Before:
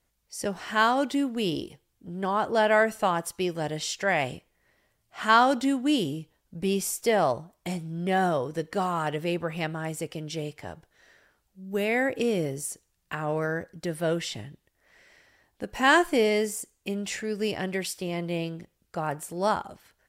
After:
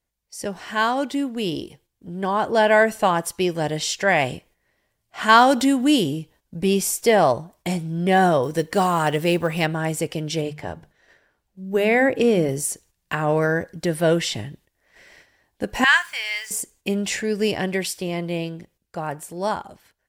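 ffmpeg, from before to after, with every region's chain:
-filter_complex "[0:a]asettb=1/sr,asplit=3[a][b][c];[a]atrim=end=5.294[d];[b]atrim=start=5.29:end=6.01,asetpts=PTS-STARTPTS,afade=t=in:d=0.004:c=qsin,afade=t=out:st=0.716:d=0.004:c=qsin,highshelf=f=9.8k:g=7.5,acompressor=mode=upward:threshold=-23dB:ratio=2.5:attack=3.2:release=140:knee=2.83:detection=peak[e];[c]atrim=start=6.006[f];[d][e]acrossfade=d=0.004:c1=hsin:c2=qsin[g];[g][f]acrossfade=d=0.004:c1=qsin:c2=hsin,asettb=1/sr,asplit=3[h][i][j];[h]atrim=end=8.434[k];[i]atrim=start=8.43:end=9.66,asetpts=PTS-STARTPTS,afade=t=in:d=0.004:c=qsin,afade=t=out:st=1.226:d=0.004:c=qsin,highshelf=f=6.2k:g=6.5,acrusher=bits=8:mode=log:mix=0:aa=0.000001[l];[j]atrim=start=9.656[m];[k][l]acrossfade=d=0.004:c1=hsin:c2=qsin[n];[n][m]acrossfade=d=0.004:c1=qsin:c2=hsin,asettb=1/sr,asplit=3[o][p][q];[o]atrim=end=10.414[r];[p]atrim=start=10.41:end=12.49,asetpts=PTS-STARTPTS,afade=t=in:d=0.004:c=qsin,afade=t=out:st=2.076:d=0.004:c=qsin,highshelf=f=3.5k:g=-7,bandreject=f=50:t=h:w=6,bandreject=f=100:t=h:w=6,bandreject=f=150:t=h:w=6,bandreject=f=200:t=h:w=6,bandreject=f=250:t=h:w=6[s];[q]atrim=start=12.486[t];[r][s]acrossfade=d=0.004:c1=hsin:c2=qsin[u];[u][t]acrossfade=d=0.004:c1=qsin:c2=hsin,asettb=1/sr,asplit=3[v][w][x];[v]atrim=end=15.844[y];[w]atrim=start=15.84:end=16.51,asetpts=PTS-STARTPTS,afade=t=in:d=0.004:c=qsin,afade=t=out:st=0.666:d=0.004:c=qsin,highpass=f=1.3k:w=0.5412,highpass=f=1.3k:w=1.3066,aemphasis=mode=reproduction:type=50kf,acrusher=bits=8:mix=0:aa=0.5[z];[x]atrim=start=16.506[aa];[y][z]acrossfade=d=0.004:c1=hsin:c2=qsin[ab];[ab][aa]acrossfade=d=0.004:c1=qsin:c2=hsin,agate=range=-8dB:threshold=-58dB:ratio=16:detection=peak,dynaudnorm=f=150:g=31:m=7dB,bandreject=f=1.3k:w=12,volume=1.5dB"

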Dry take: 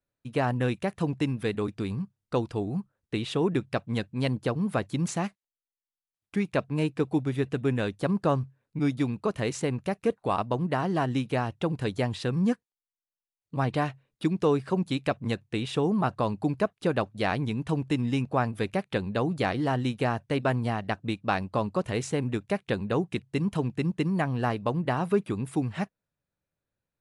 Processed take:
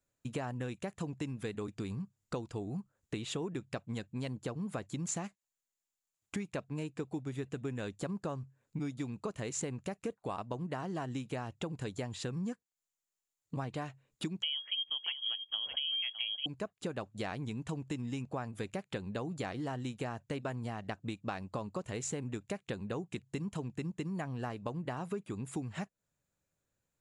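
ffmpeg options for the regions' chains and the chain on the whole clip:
-filter_complex "[0:a]asettb=1/sr,asplit=3[a][b][c];[a]atrim=end=14.424[d];[b]atrim=start=14.42:end=16.46,asetpts=PTS-STARTPTS,afade=t=in:d=0.004:c=qsin,afade=t=out:st=2.036:d=0.004:c=qsin,lowshelf=f=280:g=12,aecho=1:1:609:0.251,atrim=end_sample=89964,lowpass=f=2.9k:t=q:w=0.5098,lowpass=f=2.9k:t=q:w=0.6013,lowpass=f=2.9k:t=q:w=0.9,lowpass=f=2.9k:t=q:w=2.563,afreqshift=-3400[e];[c]atrim=start=16.456[f];[d][e]acrossfade=d=0.004:c1=hsin:c2=qsin[g];[g][f]acrossfade=d=0.004:c1=qsin:c2=hsin,acompressor=threshold=-38dB:ratio=5,equalizer=f=7.1k:t=o:w=0.29:g=13,volume=1.5dB"

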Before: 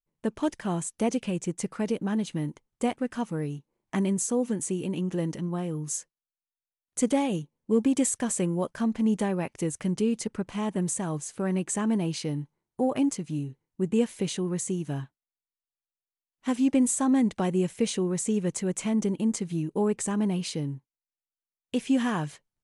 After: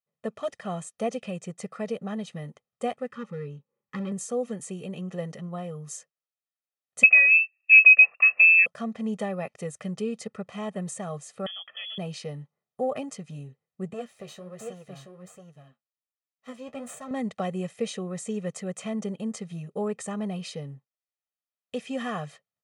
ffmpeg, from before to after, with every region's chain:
-filter_complex "[0:a]asettb=1/sr,asplit=3[a][b][c];[a]atrim=end=3.114[d];[b]atrim=start=3.11:end=4.12,asetpts=PTS-STARTPTS,afade=t=in:d=0.004:c=qsin,afade=t=out:st=1.006:d=0.004:c=qsin,aemphasis=mode=reproduction:type=75fm,volume=23dB,asoftclip=hard,volume=-23dB,asuperstop=centerf=680:order=20:qfactor=3.1[e];[c]atrim=start=4.116[f];[d][e]acrossfade=d=0.004:c1=hsin:c2=qsin[g];[g][f]acrossfade=d=0.004:c1=qsin:c2=hsin,asettb=1/sr,asplit=3[h][i][j];[h]atrim=end=7.034[k];[i]atrim=start=7.03:end=8.66,asetpts=PTS-STARTPTS,afade=t=in:d=0.004:c=qsin,afade=t=out:st=1.626:d=0.004:c=qsin,equalizer=f=170:t=o:w=2:g=13.5,lowpass=f=2.4k:t=q:w=0.5098,lowpass=f=2.4k:t=q:w=0.6013,lowpass=f=2.4k:t=q:w=0.9,lowpass=f=2.4k:t=q:w=2.563,afreqshift=-2800[l];[j]atrim=start=8.656[m];[k][l]acrossfade=d=0.004:c1=hsin:c2=qsin[n];[n][m]acrossfade=d=0.004:c1=qsin:c2=hsin,asettb=1/sr,asplit=3[o][p][q];[o]atrim=end=11.464[r];[p]atrim=start=11.46:end=11.98,asetpts=PTS-STARTPTS,afade=t=in:d=0.004:c=qsin,afade=t=out:st=0.516:d=0.004:c=qsin,highpass=120,acompressor=threshold=-29dB:ratio=5:attack=3.2:release=140:knee=1:detection=peak,lowpass=f=3.1k:t=q:w=0.5098,lowpass=f=3.1k:t=q:w=0.6013,lowpass=f=3.1k:t=q:w=0.9,lowpass=f=3.1k:t=q:w=2.563,afreqshift=-3600[s];[q]atrim=start=11.976[t];[r][s]acrossfade=d=0.004:c1=hsin:c2=qsin[u];[u][t]acrossfade=d=0.004:c1=qsin:c2=hsin,asettb=1/sr,asplit=3[v][w][x];[v]atrim=end=13.934[y];[w]atrim=start=13.93:end=17.11,asetpts=PTS-STARTPTS,afade=t=in:d=0.004:c=qsin,afade=t=out:st=3.176:d=0.004:c=qsin,aeval=exprs='if(lt(val(0),0),0.251*val(0),val(0))':c=same,aecho=1:1:677:0.562,atrim=end_sample=140238,flanger=delay=6.4:depth=7.4:regen=43:speed=1.3:shape=sinusoidal[z];[x]atrim=start=17.106[aa];[y][z]acrossfade=d=0.004:c1=hsin:c2=qsin[ab];[ab][aa]acrossfade=d=0.004:c1=qsin:c2=hsin,highpass=190,aemphasis=mode=reproduction:type=cd,aecho=1:1:1.6:0.96,volume=-3.5dB"

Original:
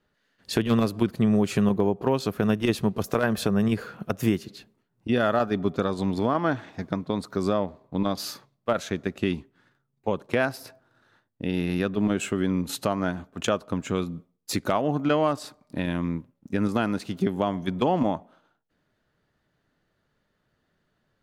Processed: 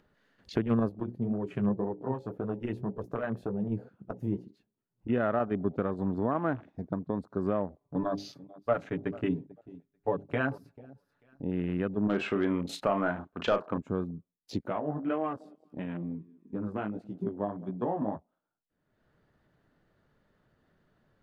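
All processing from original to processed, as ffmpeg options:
-filter_complex "[0:a]asettb=1/sr,asplit=3[a][b][c];[a]atrim=end=0.894[d];[b]atrim=start=0.89:end=4.52,asetpts=PTS-STARTPTS,afade=t=in:d=0.004:c=qsin,afade=t=out:st=3.626:d=0.004:c=qsin,bandreject=f=60:t=h:w=6,bandreject=f=120:t=h:w=6,bandreject=f=180:t=h:w=6,bandreject=f=240:t=h:w=6,bandreject=f=300:t=h:w=6,bandreject=f=360:t=h:w=6,bandreject=f=420:t=h:w=6,bandreject=f=480:t=h:w=6,bandreject=f=540:t=h:w=6,asplit=2[e][f];[f]adelay=16,volume=-11.5dB[g];[e][g]amix=inputs=2:normalize=0,atrim=end_sample=160083,flanger=delay=2:depth=8:regen=40:speed=1.9:shape=sinusoidal[h];[c]atrim=start=4.516[i];[d][h]acrossfade=d=0.004:c1=hsin:c2=qsin[j];[j][i]acrossfade=d=0.004:c1=qsin:c2=hsin,asettb=1/sr,asplit=3[k][l][m];[k]atrim=end=7.804[n];[l]atrim=start=7.8:end=11.43,asetpts=PTS-STARTPTS,afade=t=in:d=0.004:c=qsin,afade=t=out:st=3.626:d=0.004:c=qsin,bandreject=f=50:t=h:w=6,bandreject=f=100:t=h:w=6,bandreject=f=150:t=h:w=6,bandreject=f=200:t=h:w=6,bandreject=f=250:t=h:w=6,bandreject=f=300:t=h:w=6,bandreject=f=350:t=h:w=6,bandreject=f=400:t=h:w=6,aecho=1:1:7:0.83,atrim=end_sample=160083,aecho=1:1:441|882:0.119|0.0333,atrim=end_sample=160083[o];[m]atrim=start=11.426[p];[n][o]acrossfade=d=0.004:c1=hsin:c2=qsin[q];[q][p]acrossfade=d=0.004:c1=qsin:c2=hsin,asettb=1/sr,asplit=3[r][s][t];[r]atrim=end=12.094[u];[s]atrim=start=12.09:end=13.78,asetpts=PTS-STARTPTS,afade=t=in:d=0.004:c=qsin,afade=t=out:st=1.686:d=0.004:c=qsin,asplit=2[v][w];[w]highpass=f=720:p=1,volume=15dB,asoftclip=type=tanh:threshold=-10dB[x];[v][x]amix=inputs=2:normalize=0,lowpass=f=4.3k:p=1,volume=-6dB,asplit=2[y][z];[z]adelay=35,volume=-8dB[aa];[y][aa]amix=inputs=2:normalize=0,atrim=end_sample=74529[ab];[t]atrim=start=13.776[ac];[u][ab]acrossfade=d=0.004:c1=hsin:c2=qsin[ad];[ad][ac]acrossfade=d=0.004:c1=qsin:c2=hsin,asettb=1/sr,asplit=3[ae][af][ag];[ae]atrim=end=14.614[ah];[af]atrim=start=14.61:end=18.16,asetpts=PTS-STARTPTS,afade=t=in:d=0.004:c=qsin,afade=t=out:st=3.546:d=0.004:c=qsin,lowshelf=f=120:g=-5.5,flanger=delay=15.5:depth=4.1:speed=1.6,aecho=1:1:201|402|603|804:0.1|0.05|0.025|0.0125,atrim=end_sample=156555[ai];[ag]atrim=start=18.156[aj];[ah][ai]acrossfade=d=0.004:c1=hsin:c2=qsin[ak];[ak][aj]acrossfade=d=0.004:c1=qsin:c2=hsin,afwtdn=0.0158,highshelf=f=2.4k:g=-10.5,acompressor=mode=upward:threshold=-44dB:ratio=2.5,volume=-4.5dB"

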